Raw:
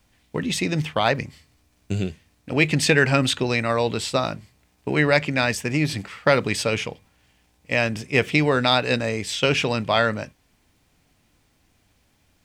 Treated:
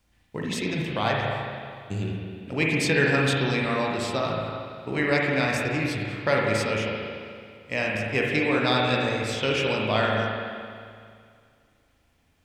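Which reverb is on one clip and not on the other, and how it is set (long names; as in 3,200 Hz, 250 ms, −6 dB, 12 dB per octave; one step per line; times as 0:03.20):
spring reverb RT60 2.2 s, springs 37/56 ms, chirp 60 ms, DRR −2.5 dB
level −7 dB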